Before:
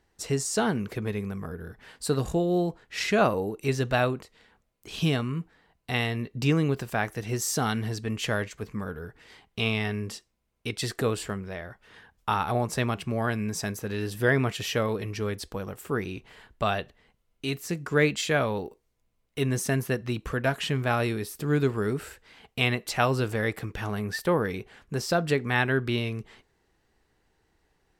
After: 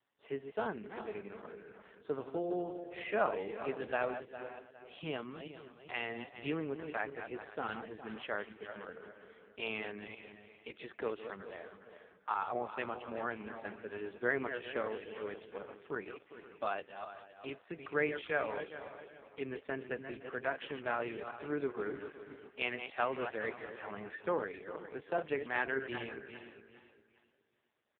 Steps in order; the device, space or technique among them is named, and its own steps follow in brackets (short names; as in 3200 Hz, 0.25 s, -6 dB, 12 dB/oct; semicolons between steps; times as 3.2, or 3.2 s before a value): regenerating reverse delay 0.203 s, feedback 56%, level -8 dB; satellite phone (BPF 350–3200 Hz; echo 0.513 s -17.5 dB; gain -7.5 dB; AMR-NB 5.15 kbps 8000 Hz)